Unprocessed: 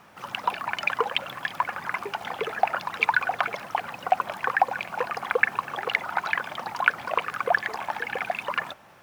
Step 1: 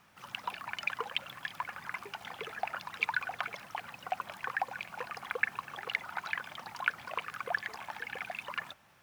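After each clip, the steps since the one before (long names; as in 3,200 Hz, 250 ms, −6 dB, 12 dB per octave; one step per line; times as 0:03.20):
parametric band 520 Hz −8.5 dB 2.9 octaves
level −6 dB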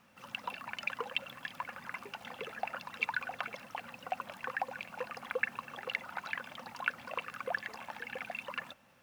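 hollow resonant body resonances 240/520/2,700 Hz, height 10 dB, ringing for 45 ms
level −3 dB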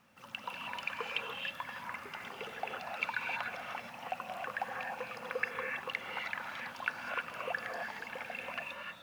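reverb whose tail is shaped and stops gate 340 ms rising, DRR 0.5 dB
level −2 dB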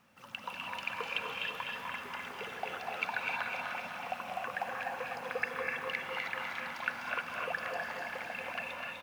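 repeating echo 251 ms, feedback 54%, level −4 dB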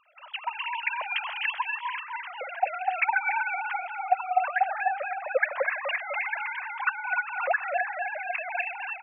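three sine waves on the formant tracks
level +9 dB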